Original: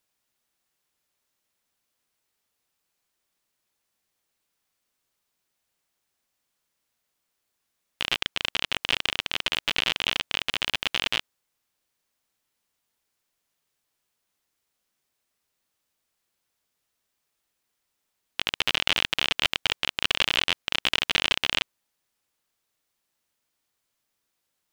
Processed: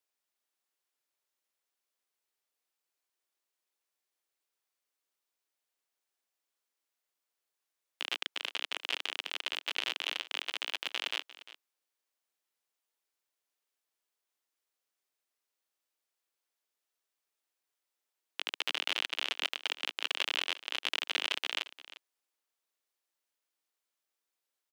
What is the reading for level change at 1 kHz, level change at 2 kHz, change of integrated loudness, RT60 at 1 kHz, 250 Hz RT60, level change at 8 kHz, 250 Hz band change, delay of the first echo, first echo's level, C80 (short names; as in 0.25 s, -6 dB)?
-9.0 dB, -9.0 dB, -9.0 dB, none, none, -9.0 dB, -14.0 dB, 0.35 s, -17.0 dB, none